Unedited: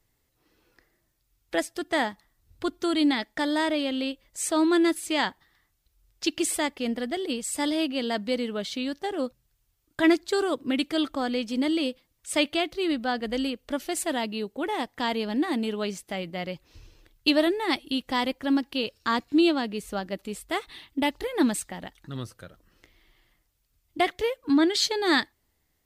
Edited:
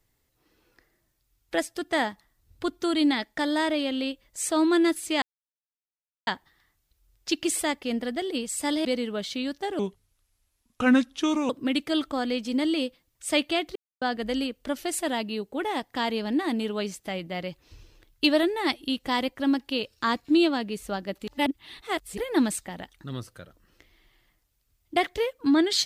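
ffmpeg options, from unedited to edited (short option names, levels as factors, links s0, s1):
-filter_complex "[0:a]asplit=9[s0][s1][s2][s3][s4][s5][s6][s7][s8];[s0]atrim=end=5.22,asetpts=PTS-STARTPTS,afade=t=out:st=5.216:d=0.004:c=hsin,apad=pad_dur=1.05[s9];[s1]atrim=start=5.22:end=7.802,asetpts=PTS-STARTPTS,afade=t=in:d=0.004:c=hsin[s10];[s2]atrim=start=8.258:end=9.204[s11];[s3]atrim=start=9.2:end=10.53,asetpts=PTS-STARTPTS,asetrate=34398,aresample=44100,atrim=end_sample=75196,asetpts=PTS-STARTPTS[s12];[s4]atrim=start=10.526:end=12.79,asetpts=PTS-STARTPTS,afade=t=out:st=2.26:d=0.004:c=hsin[s13];[s5]atrim=start=12.79:end=13.05,asetpts=PTS-STARTPTS,volume=0[s14];[s6]atrim=start=13.05:end=20.312,asetpts=PTS-STARTPTS,afade=t=in:d=0.004:c=hsin[s15];[s7]atrim=start=20.308:end=21.212,asetpts=PTS-STARTPTS,areverse[s16];[s8]atrim=start=21.208[s17];[s9][s10]concat=n=2:v=0:a=1[s18];[s18][s11]acrossfade=d=0.004:c1=hsin:c2=hsin[s19];[s19][s12]acrossfade=d=0.004:c1=hsin:c2=hsin[s20];[s13][s14][s15]concat=n=3:v=0:a=1[s21];[s20][s21]acrossfade=d=0.004:c1=hsin:c2=hsin[s22];[s22][s16]acrossfade=d=0.004:c1=hsin:c2=hsin[s23];[s23][s17]acrossfade=d=0.004:c1=hsin:c2=hsin"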